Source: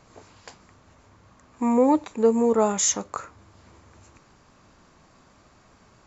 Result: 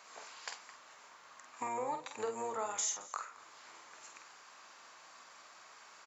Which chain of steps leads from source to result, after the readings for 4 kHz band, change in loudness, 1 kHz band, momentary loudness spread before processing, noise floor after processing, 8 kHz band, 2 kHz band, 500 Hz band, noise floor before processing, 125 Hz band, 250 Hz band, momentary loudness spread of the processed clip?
-9.5 dB, -17.5 dB, -10.5 dB, 11 LU, -58 dBFS, no reading, -4.5 dB, -19.0 dB, -57 dBFS, -22.0 dB, -29.0 dB, 20 LU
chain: octave divider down 1 oct, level +2 dB; high-pass 1 kHz 12 dB/octave; compression 4:1, threshold -41 dBFS, peak gain reduction 18.5 dB; doubling 48 ms -6 dB; delay 221 ms -19.5 dB; trim +3.5 dB

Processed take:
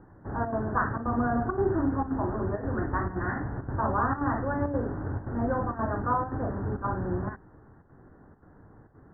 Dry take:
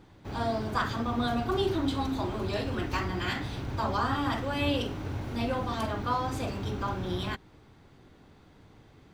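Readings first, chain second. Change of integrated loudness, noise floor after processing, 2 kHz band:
+1.5 dB, -55 dBFS, 0.0 dB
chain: square tremolo 1.9 Hz, depth 60%, duty 85%; steep low-pass 1.8 kHz 96 dB/octave; trim +2.5 dB

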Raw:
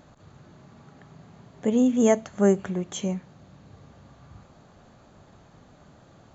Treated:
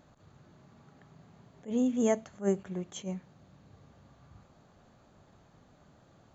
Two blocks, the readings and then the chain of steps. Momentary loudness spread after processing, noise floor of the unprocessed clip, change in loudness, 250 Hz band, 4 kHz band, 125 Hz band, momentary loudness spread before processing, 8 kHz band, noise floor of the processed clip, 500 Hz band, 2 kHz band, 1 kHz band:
14 LU, -55 dBFS, -8.0 dB, -8.5 dB, -8.0 dB, -9.0 dB, 11 LU, no reading, -62 dBFS, -8.5 dB, -9.0 dB, -8.5 dB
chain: attacks held to a fixed rise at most 260 dB/s; trim -7.5 dB

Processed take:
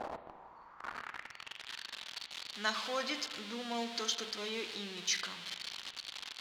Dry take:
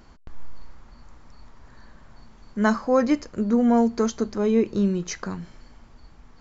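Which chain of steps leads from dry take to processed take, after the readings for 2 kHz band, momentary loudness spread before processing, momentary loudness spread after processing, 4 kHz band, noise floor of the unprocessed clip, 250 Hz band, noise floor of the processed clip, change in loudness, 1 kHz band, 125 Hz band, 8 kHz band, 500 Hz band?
-4.5 dB, 13 LU, 12 LU, +7.5 dB, -52 dBFS, -24.5 dB, -57 dBFS, -16.0 dB, -11.5 dB, under -20 dB, no reading, -18.5 dB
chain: jump at every zero crossing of -29 dBFS; spring tank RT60 1.8 s, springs 34/55 ms, chirp 25 ms, DRR 9 dB; band-pass sweep 710 Hz -> 3.6 kHz, 0.34–1.74 s; trim +4.5 dB

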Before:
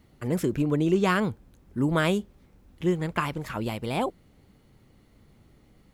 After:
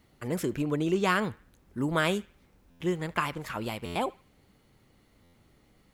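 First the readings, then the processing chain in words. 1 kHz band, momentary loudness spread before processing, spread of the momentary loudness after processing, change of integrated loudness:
-1.0 dB, 9 LU, 9 LU, -3.0 dB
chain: bass shelf 440 Hz -6.5 dB; band-passed feedback delay 75 ms, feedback 41%, band-pass 1.9 kHz, level -20 dB; buffer glitch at 2.70/3.85/5.23 s, samples 512, times 8

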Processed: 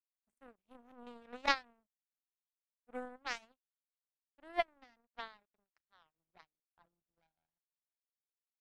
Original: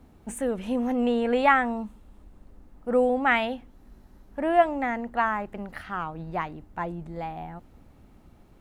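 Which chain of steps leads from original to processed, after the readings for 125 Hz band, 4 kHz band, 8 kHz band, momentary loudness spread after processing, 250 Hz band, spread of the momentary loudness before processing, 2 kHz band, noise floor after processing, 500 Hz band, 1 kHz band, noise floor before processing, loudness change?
under -30 dB, -5.5 dB, no reading, 21 LU, -27.0 dB, 17 LU, -14.5 dB, under -85 dBFS, -21.0 dB, -17.5 dB, -55 dBFS, -13.5 dB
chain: power-law waveshaper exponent 3; time-frequency box 6.52–6.86 s, 1.7–9.8 kHz -9 dB; trim -4 dB

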